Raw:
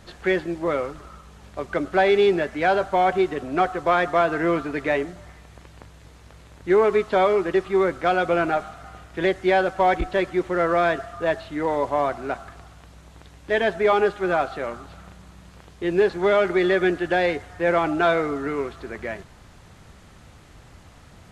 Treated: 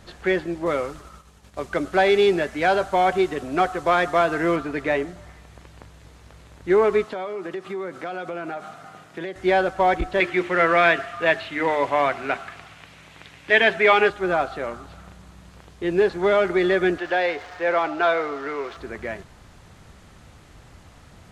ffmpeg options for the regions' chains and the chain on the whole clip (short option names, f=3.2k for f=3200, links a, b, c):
-filter_complex "[0:a]asettb=1/sr,asplit=3[a][b][c];[a]atrim=end=0.664[d];[b]atrim=start=0.66:end=4.56,asetpts=PTS-STARTPTS,afade=t=in:d=0.004:c=qsin,afade=t=out:st=3.896:d=0.004:c=qsin,agate=range=-33dB:threshold=-41dB:ratio=3:release=100:detection=peak,highshelf=f=4.3k:g=7.5[e];[c]atrim=start=4.556[f];[d][e]acrossfade=d=0.004:c1=hsin:c2=qsin[g];[g][f]acrossfade=d=0.004:c1=qsin:c2=hsin,asettb=1/sr,asplit=3[h][i][j];[h]atrim=end=7.054[k];[i]atrim=start=7.05:end=9.36,asetpts=PTS-STARTPTS,afade=t=in:d=0.004:c=qsin,afade=t=out:st=2.306:d=0.004:c=qsin,highpass=f=130:w=0.5412,highpass=f=130:w=1.3066,acompressor=threshold=-28dB:ratio=5:attack=3.2:release=140:knee=1:detection=peak[l];[j]atrim=start=9.356[m];[k][l]acrossfade=d=0.004:c1=hsin:c2=qsin[n];[n][m]acrossfade=d=0.004:c1=qsin:c2=hsin,asettb=1/sr,asplit=3[o][p][q];[o]atrim=end=10.204[r];[p]atrim=start=10.2:end=14.1,asetpts=PTS-STARTPTS,afade=t=in:d=0.004:c=qsin,afade=t=out:st=3.896:d=0.004:c=qsin,highpass=f=85:w=0.5412,highpass=f=85:w=1.3066,equalizer=f=2.4k:w=1:g=12.5,bandreject=f=50:t=h:w=6,bandreject=f=100:t=h:w=6,bandreject=f=150:t=h:w=6,bandreject=f=200:t=h:w=6,bandreject=f=250:t=h:w=6,bandreject=f=300:t=h:w=6,bandreject=f=350:t=h:w=6,bandreject=f=400:t=h:w=6[s];[q]atrim=start=14.096[t];[r][s]acrossfade=d=0.004:c1=hsin:c2=qsin[u];[u][t]acrossfade=d=0.004:c1=qsin:c2=hsin,asettb=1/sr,asplit=3[v][w][x];[v]atrim=end=16.984[y];[w]atrim=start=16.98:end=18.77,asetpts=PTS-STARTPTS,afade=t=in:d=0.004:c=qsin,afade=t=out:st=1.786:d=0.004:c=qsin,aeval=exprs='val(0)+0.5*0.0158*sgn(val(0))':c=same,acrossover=split=390 6000:gain=0.178 1 0.1[z][aa][ab];[z][aa][ab]amix=inputs=3:normalize=0[ac];[x]atrim=start=18.766[ad];[y][ac]acrossfade=d=0.004:c1=hsin:c2=qsin[ae];[ae][ad]acrossfade=d=0.004:c1=qsin:c2=hsin"